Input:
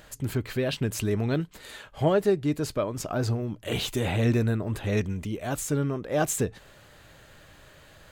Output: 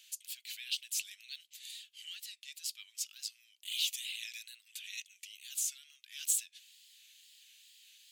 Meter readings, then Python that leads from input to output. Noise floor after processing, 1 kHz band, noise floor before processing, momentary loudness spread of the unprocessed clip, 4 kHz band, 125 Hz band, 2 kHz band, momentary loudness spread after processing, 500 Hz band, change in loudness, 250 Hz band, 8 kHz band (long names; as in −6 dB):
−70 dBFS, below −40 dB, −53 dBFS, 8 LU, −0.5 dB, below −40 dB, −10.5 dB, 24 LU, below −40 dB, −10.5 dB, below −40 dB, 0.0 dB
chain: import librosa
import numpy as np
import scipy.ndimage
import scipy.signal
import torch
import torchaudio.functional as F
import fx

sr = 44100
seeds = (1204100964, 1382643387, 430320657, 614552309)

y = scipy.signal.sosfilt(scipy.signal.butter(6, 2700.0, 'highpass', fs=sr, output='sos'), x)
y = fx.wow_flutter(y, sr, seeds[0], rate_hz=2.1, depth_cents=93.0)